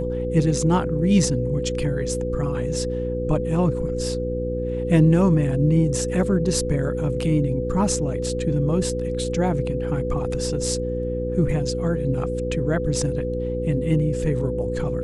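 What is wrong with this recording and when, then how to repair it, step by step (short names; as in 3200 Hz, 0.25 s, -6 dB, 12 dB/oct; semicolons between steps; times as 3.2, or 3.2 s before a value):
hum 60 Hz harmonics 7 -28 dBFS
tone 500 Hz -26 dBFS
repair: de-hum 60 Hz, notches 7; notch 500 Hz, Q 30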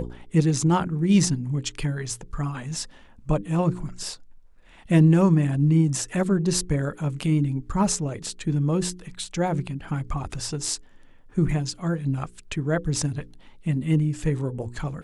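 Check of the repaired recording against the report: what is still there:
none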